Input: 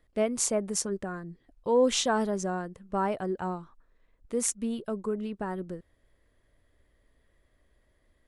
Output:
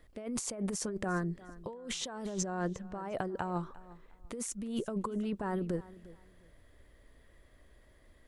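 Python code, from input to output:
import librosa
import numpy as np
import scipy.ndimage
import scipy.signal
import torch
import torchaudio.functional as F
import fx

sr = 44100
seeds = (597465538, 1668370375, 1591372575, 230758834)

y = fx.peak_eq(x, sr, hz=9800.0, db=-13.5, octaves=0.36, at=(2.32, 3.0))
y = fx.over_compress(y, sr, threshold_db=-37.0, ratio=-1.0)
y = fx.echo_feedback(y, sr, ms=353, feedback_pct=26, wet_db=-19)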